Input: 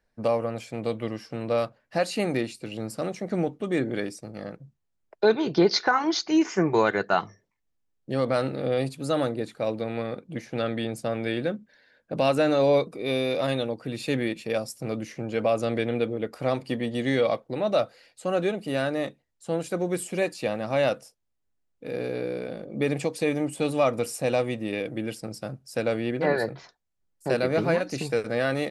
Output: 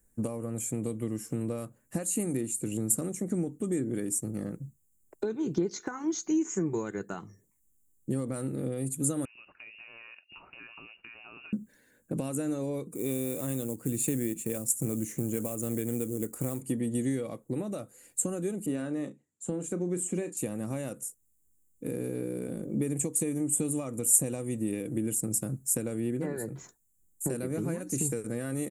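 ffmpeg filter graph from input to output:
-filter_complex "[0:a]asettb=1/sr,asplit=3[a][b][c];[a]atrim=end=9.254[d];[b]atrim=start=9.25:end=11.53,asetpts=PTS-STARTPTS,afade=t=in:d=0.004:c=qsin,afade=t=out:st=2.276:d=0.004:c=qsin,lowshelf=f=300:g=-11,acompressor=threshold=-37dB:ratio=10:attack=3.2:release=140:knee=1:detection=peak,lowpass=f=2.6k:t=q:w=0.5098,lowpass=f=2.6k:t=q:w=0.6013,lowpass=f=2.6k:t=q:w=0.9,lowpass=f=2.6k:t=q:w=2.563,afreqshift=-3000[e];[c]atrim=start=11.526[f];[d][e]acrossfade=d=0.004:c1=hsin:c2=qsin[g];[g][f]acrossfade=d=0.004:c1=qsin:c2=hsin,asettb=1/sr,asplit=3[h][i][j];[h]atrim=end=12.924[k];[i]atrim=start=12.92:end=16.61,asetpts=PTS-STARTPTS,afade=t=in:d=0.004:c=qsin,afade=t=out:st=3.686:d=0.004:c=qsin,highshelf=f=11k:g=-7.5,acrusher=bits=6:mode=log:mix=0:aa=0.000001[l];[j]atrim=start=16.606[m];[k][l]acrossfade=d=0.004:c1=hsin:c2=qsin[n];[n][m]acrossfade=d=0.004:c1=qsin:c2=hsin,asettb=1/sr,asplit=3[o][p][q];[o]atrim=end=18.664[r];[p]atrim=start=18.66:end=20.37,asetpts=PTS-STARTPTS,afade=t=in:d=0.004:c=qsin,afade=t=out:st=1.706:d=0.004:c=qsin,highpass=150,lowpass=4.6k,asplit=2[s][t];[t]adelay=34,volume=-12dB[u];[s][u]amix=inputs=2:normalize=0,atrim=end_sample=75411[v];[q]atrim=start=20.366[w];[r][v]acrossfade=d=0.004:c1=hsin:c2=qsin[x];[x][w]acrossfade=d=0.004:c1=qsin:c2=hsin,acompressor=threshold=-33dB:ratio=4,firequalizer=gain_entry='entry(320,0);entry(640,-15);entry(1000,-11);entry(4900,-18);entry(7100,14)':delay=0.05:min_phase=1,volume=6.5dB"

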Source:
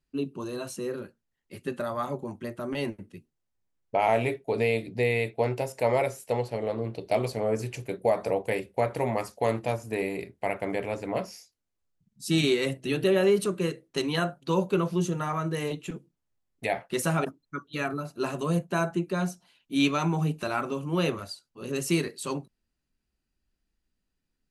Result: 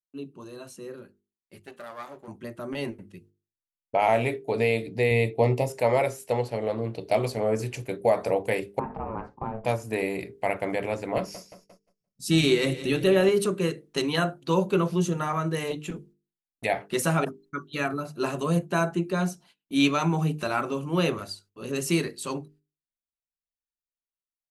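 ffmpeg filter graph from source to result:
-filter_complex "[0:a]asettb=1/sr,asplit=3[a][b][c];[a]atrim=end=1.594[d];[b]atrim=start=1.59:end=2.28,asetpts=PTS-STARTPTS,afade=t=in:d=0.004:c=qsin,afade=t=out:st=0.686:d=0.004:c=qsin,aeval=exprs='if(lt(val(0),0),0.251*val(0),val(0))':c=same,highpass=f=470:p=1[e];[c]atrim=start=2.276[f];[d][e]acrossfade=d=0.004:c1=hsin:c2=qsin[g];[g][f]acrossfade=d=0.004:c1=qsin:c2=hsin,asettb=1/sr,asplit=3[h][i][j];[h]atrim=end=5.114[k];[i]atrim=start=5.11:end=5.7,asetpts=PTS-STARTPTS,afade=t=in:d=0.004:c=qsin,afade=t=out:st=0.586:d=0.004:c=qsin,asuperstop=centerf=1500:order=4:qfactor=3,lowshelf=f=380:g=6.5[l];[j]atrim=start=5.696[m];[k][l]acrossfade=d=0.004:c1=hsin:c2=qsin[n];[n][m]acrossfade=d=0.004:c1=qsin:c2=hsin,asettb=1/sr,asplit=3[o][p][q];[o]atrim=end=8.794[r];[p]atrim=start=8.79:end=9.65,asetpts=PTS-STARTPTS,afade=t=in:d=0.004:c=qsin,afade=t=out:st=0.856:d=0.004:c=qsin,lowpass=1.1k,acompressor=threshold=-29dB:ratio=2.5:attack=3.2:release=140:knee=1:detection=peak,aeval=exprs='val(0)*sin(2*PI*330*n/s)':c=same[s];[q]atrim=start=9.646[t];[r][s]acrossfade=d=0.004:c1=hsin:c2=qsin[u];[u][t]acrossfade=d=0.004:c1=qsin:c2=hsin,asettb=1/sr,asplit=3[v][w][x];[v]atrim=end=11.174[y];[w]atrim=start=11.17:end=13.29,asetpts=PTS-STARTPTS,afade=t=in:d=0.004:c=qsin,afade=t=out:st=2.116:d=0.004:c=qsin,lowshelf=f=63:g=12,aecho=1:1:174|348|522|696|870:0.178|0.0978|0.0538|0.0296|0.0163,atrim=end_sample=93492[z];[x]atrim=start=13.286[aa];[y][z]acrossfade=d=0.004:c1=hsin:c2=qsin[ab];[ab][aa]acrossfade=d=0.004:c1=qsin:c2=hsin,agate=range=-25dB:threshold=-56dB:ratio=16:detection=peak,bandreject=f=50:t=h:w=6,bandreject=f=100:t=h:w=6,bandreject=f=150:t=h:w=6,bandreject=f=200:t=h:w=6,bandreject=f=250:t=h:w=6,bandreject=f=300:t=h:w=6,bandreject=f=350:t=h:w=6,bandreject=f=400:t=h:w=6,bandreject=f=450:t=h:w=6,dynaudnorm=f=580:g=9:m=11.5dB,volume=-7dB"

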